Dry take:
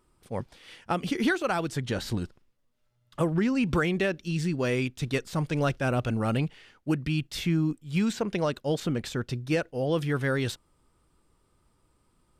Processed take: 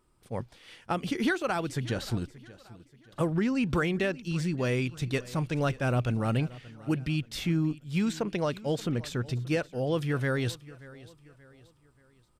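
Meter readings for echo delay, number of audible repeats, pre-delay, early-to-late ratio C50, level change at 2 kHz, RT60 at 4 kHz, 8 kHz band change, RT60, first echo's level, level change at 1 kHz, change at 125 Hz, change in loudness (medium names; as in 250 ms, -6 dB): 580 ms, 3, no reverb, no reverb, -2.0 dB, no reverb, -2.0 dB, no reverb, -19.5 dB, -2.0 dB, -0.5 dB, -1.5 dB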